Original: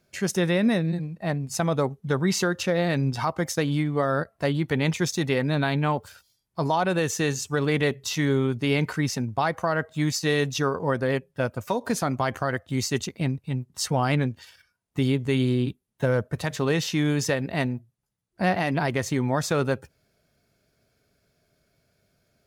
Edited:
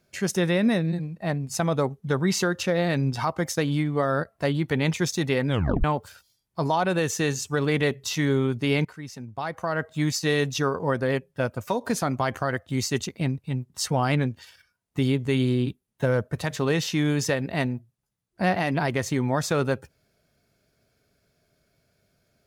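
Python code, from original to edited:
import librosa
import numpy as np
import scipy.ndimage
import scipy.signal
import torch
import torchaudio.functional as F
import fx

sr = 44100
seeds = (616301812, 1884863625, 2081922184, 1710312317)

y = fx.edit(x, sr, fx.tape_stop(start_s=5.48, length_s=0.36),
    fx.fade_in_from(start_s=8.85, length_s=1.03, curve='qua', floor_db=-14.0), tone=tone)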